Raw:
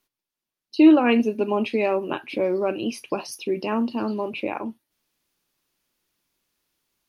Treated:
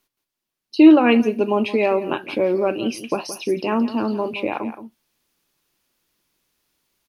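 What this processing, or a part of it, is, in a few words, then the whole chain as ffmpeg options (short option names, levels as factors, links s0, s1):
ducked delay: -filter_complex "[0:a]asplit=3[s0][s1][s2];[s1]adelay=171,volume=0.473[s3];[s2]apad=whole_len=319929[s4];[s3][s4]sidechaincompress=threshold=0.0398:ratio=4:attack=16:release=1060[s5];[s0][s5]amix=inputs=2:normalize=0,volume=1.5"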